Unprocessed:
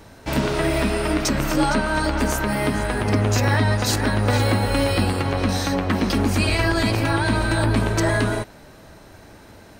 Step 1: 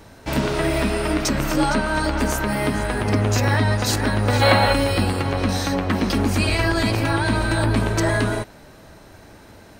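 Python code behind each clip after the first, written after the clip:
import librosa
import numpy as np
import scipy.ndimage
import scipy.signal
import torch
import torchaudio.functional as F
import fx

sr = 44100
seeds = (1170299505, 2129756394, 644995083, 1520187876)

y = fx.spec_box(x, sr, start_s=4.42, length_s=0.31, low_hz=510.0, high_hz=4500.0, gain_db=9)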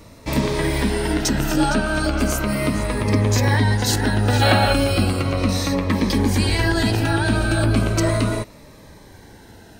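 y = fx.notch_cascade(x, sr, direction='falling', hz=0.36)
y = F.gain(torch.from_numpy(y), 2.0).numpy()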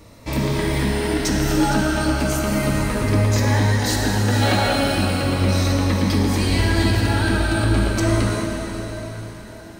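y = 10.0 ** (-10.0 / 20.0) * np.tanh(x / 10.0 ** (-10.0 / 20.0))
y = fx.rev_plate(y, sr, seeds[0], rt60_s=4.4, hf_ratio=0.95, predelay_ms=0, drr_db=-0.5)
y = F.gain(torch.from_numpy(y), -2.5).numpy()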